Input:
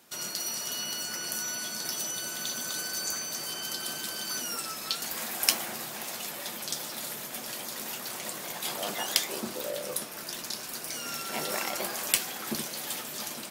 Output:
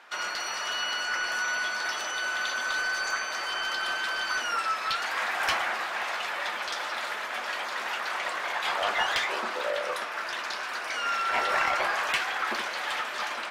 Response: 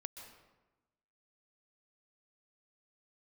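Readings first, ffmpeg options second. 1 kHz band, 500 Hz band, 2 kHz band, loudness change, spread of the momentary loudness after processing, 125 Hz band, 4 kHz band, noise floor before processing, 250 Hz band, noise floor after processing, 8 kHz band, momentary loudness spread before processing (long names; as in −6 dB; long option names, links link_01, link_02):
+11.5 dB, +4.0 dB, +12.0 dB, +3.0 dB, 6 LU, can't be measured, +1.5 dB, −40 dBFS, −6.5 dB, −35 dBFS, −8.0 dB, 8 LU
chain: -filter_complex "[0:a]bandpass=frequency=1500:width_type=q:width=1:csg=0,asplit=2[link_01][link_02];[link_02]highpass=frequency=720:poles=1,volume=23dB,asoftclip=type=tanh:threshold=-10.5dB[link_03];[link_01][link_03]amix=inputs=2:normalize=0,lowpass=frequency=1900:poles=1,volume=-6dB"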